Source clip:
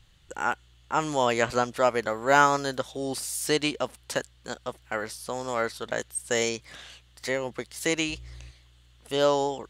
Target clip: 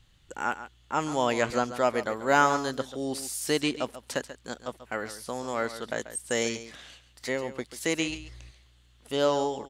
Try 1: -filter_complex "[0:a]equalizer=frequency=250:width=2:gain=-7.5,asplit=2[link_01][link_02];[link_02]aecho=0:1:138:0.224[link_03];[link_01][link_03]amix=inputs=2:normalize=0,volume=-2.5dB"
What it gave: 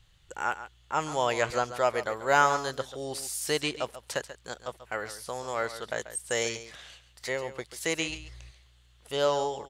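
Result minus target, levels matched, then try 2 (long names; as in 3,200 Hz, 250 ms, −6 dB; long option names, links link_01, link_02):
250 Hz band −6.5 dB
-filter_complex "[0:a]equalizer=frequency=250:width=2:gain=4,asplit=2[link_01][link_02];[link_02]aecho=0:1:138:0.224[link_03];[link_01][link_03]amix=inputs=2:normalize=0,volume=-2.5dB"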